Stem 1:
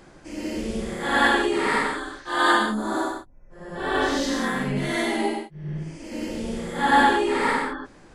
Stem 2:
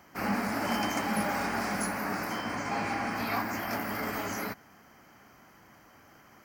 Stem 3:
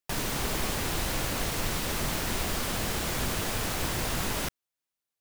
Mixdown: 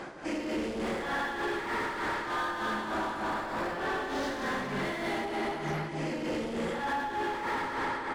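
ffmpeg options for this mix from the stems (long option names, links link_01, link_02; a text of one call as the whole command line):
ffmpeg -i stem1.wav -i stem2.wav -i stem3.wav -filter_complex "[0:a]volume=-2.5dB,asplit=2[link_01][link_02];[link_02]volume=-6.5dB[link_03];[1:a]lowpass=9600,adelay=1350,volume=-4dB[link_04];[2:a]acrusher=samples=14:mix=1:aa=0.000001,adelay=750,volume=-0.5dB[link_05];[link_04][link_05]amix=inputs=2:normalize=0,acompressor=threshold=-38dB:ratio=6,volume=0dB[link_06];[link_03]aecho=0:1:231|462|693|924|1155|1386|1617:1|0.49|0.24|0.118|0.0576|0.0282|0.0138[link_07];[link_01][link_06][link_07]amix=inputs=3:normalize=0,asplit=2[link_08][link_09];[link_09]highpass=frequency=720:poles=1,volume=25dB,asoftclip=type=tanh:threshold=-17.5dB[link_10];[link_08][link_10]amix=inputs=2:normalize=0,lowpass=frequency=1400:poles=1,volume=-6dB,tremolo=f=3.3:d=0.61,acompressor=threshold=-30dB:ratio=6" out.wav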